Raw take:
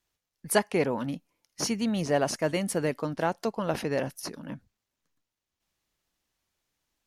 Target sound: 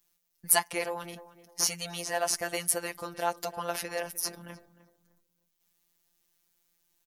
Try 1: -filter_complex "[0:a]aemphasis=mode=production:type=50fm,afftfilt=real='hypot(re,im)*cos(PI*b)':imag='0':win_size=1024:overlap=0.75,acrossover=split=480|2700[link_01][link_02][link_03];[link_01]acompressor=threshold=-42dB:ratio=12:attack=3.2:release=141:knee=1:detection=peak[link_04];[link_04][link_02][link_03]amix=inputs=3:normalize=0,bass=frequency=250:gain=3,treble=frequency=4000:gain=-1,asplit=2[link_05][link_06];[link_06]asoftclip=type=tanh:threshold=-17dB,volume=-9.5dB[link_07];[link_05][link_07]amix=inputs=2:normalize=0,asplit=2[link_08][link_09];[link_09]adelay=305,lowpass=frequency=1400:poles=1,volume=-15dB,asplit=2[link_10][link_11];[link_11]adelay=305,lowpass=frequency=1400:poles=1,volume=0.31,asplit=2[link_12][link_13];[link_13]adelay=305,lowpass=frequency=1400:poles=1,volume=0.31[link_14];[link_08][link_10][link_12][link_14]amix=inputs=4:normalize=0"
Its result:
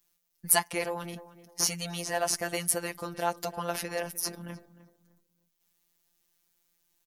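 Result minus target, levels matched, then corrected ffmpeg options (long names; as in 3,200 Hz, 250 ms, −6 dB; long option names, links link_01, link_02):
downward compressor: peak gain reduction −6.5 dB
-filter_complex "[0:a]aemphasis=mode=production:type=50fm,afftfilt=real='hypot(re,im)*cos(PI*b)':imag='0':win_size=1024:overlap=0.75,acrossover=split=480|2700[link_01][link_02][link_03];[link_01]acompressor=threshold=-49dB:ratio=12:attack=3.2:release=141:knee=1:detection=peak[link_04];[link_04][link_02][link_03]amix=inputs=3:normalize=0,bass=frequency=250:gain=3,treble=frequency=4000:gain=-1,asplit=2[link_05][link_06];[link_06]asoftclip=type=tanh:threshold=-17dB,volume=-9.5dB[link_07];[link_05][link_07]amix=inputs=2:normalize=0,asplit=2[link_08][link_09];[link_09]adelay=305,lowpass=frequency=1400:poles=1,volume=-15dB,asplit=2[link_10][link_11];[link_11]adelay=305,lowpass=frequency=1400:poles=1,volume=0.31,asplit=2[link_12][link_13];[link_13]adelay=305,lowpass=frequency=1400:poles=1,volume=0.31[link_14];[link_08][link_10][link_12][link_14]amix=inputs=4:normalize=0"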